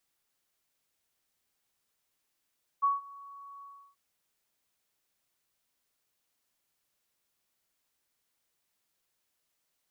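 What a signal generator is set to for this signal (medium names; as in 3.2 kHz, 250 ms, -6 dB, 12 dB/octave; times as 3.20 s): ADSR sine 1.12 kHz, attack 21 ms, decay 165 ms, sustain -23.5 dB, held 0.80 s, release 335 ms -21.5 dBFS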